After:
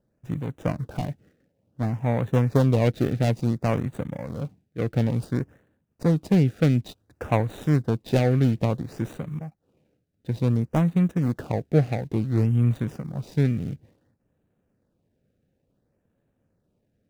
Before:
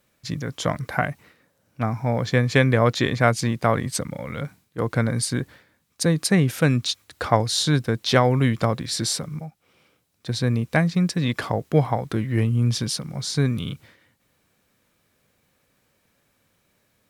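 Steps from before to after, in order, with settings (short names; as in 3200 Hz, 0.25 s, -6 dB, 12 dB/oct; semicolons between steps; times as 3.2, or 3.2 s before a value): median filter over 41 samples; LFO notch sine 0.57 Hz 940–5200 Hz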